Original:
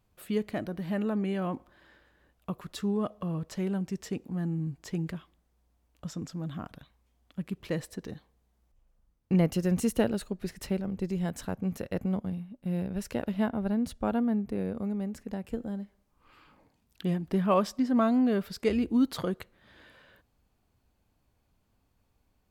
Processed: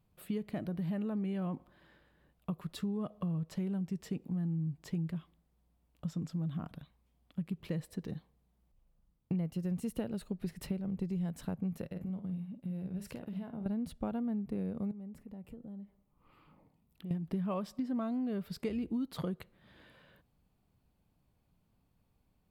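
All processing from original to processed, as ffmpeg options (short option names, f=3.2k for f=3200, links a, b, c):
-filter_complex "[0:a]asettb=1/sr,asplit=3[a][b][c];[a]atrim=end=11.864[d];[b]atrim=start=11.86:end=13.66,asetpts=PTS-STARTPTS,afade=t=in:d=0.004:c=qsin,afade=t=out:st=1.796:d=0.004:c=qsin,highpass=45,acompressor=threshold=-37dB:ratio=10:attack=3.2:release=140:knee=1:detection=peak,asplit=2[e][f];[f]adelay=49,volume=-9dB[g];[e][g]amix=inputs=2:normalize=0,atrim=end_sample=79380[h];[c]atrim=start=13.656[i];[d][h]acrossfade=d=0.004:c1=hsin:c2=qsin[j];[j][i]acrossfade=d=0.004:c1=qsin:c2=hsin,asettb=1/sr,asplit=3[k][l][m];[k]atrim=end=14.914[n];[l]atrim=start=14.91:end=17.11,asetpts=PTS-STARTPTS,afade=t=in:d=0.004:c=qsin,afade=t=out:st=2.196:d=0.004:c=qsin,equalizer=f=5.2k:w=0.6:g=-8,acompressor=threshold=-45dB:ratio=4:attack=3.2:release=140:knee=1:detection=peak,bandreject=f=1.6k:w=7.6[o];[m]atrim=start=17.106[p];[n][o]acrossfade=d=0.004:c1=hsin:c2=qsin[q];[q][p]acrossfade=d=0.004:c1=qsin:c2=hsin,equalizer=f=160:t=o:w=0.67:g=9,equalizer=f=1.6k:t=o:w=0.67:g=-3,equalizer=f=6.3k:t=o:w=0.67:g=-6,acompressor=threshold=-29dB:ratio=6,volume=-3.5dB"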